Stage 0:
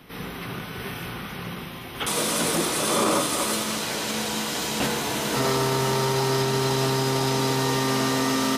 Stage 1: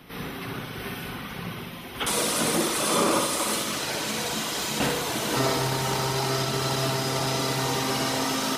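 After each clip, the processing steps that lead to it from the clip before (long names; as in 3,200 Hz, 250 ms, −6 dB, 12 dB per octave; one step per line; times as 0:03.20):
reverb reduction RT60 0.97 s
flutter between parallel walls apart 10.6 metres, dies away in 0.8 s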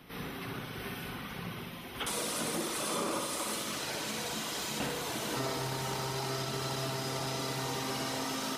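downward compressor 2 to 1, threshold −29 dBFS, peak gain reduction 6 dB
level −5.5 dB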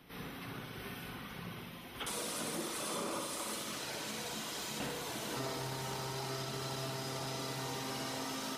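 hum removal 77.74 Hz, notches 39
level −4.5 dB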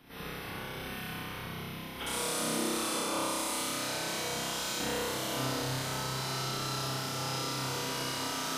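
flutter between parallel walls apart 5.3 metres, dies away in 0.75 s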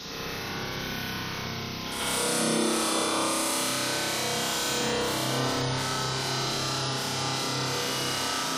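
backwards echo 146 ms −5 dB
noise in a band 3,300–6,000 Hz −47 dBFS
gate on every frequency bin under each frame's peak −25 dB strong
level +5 dB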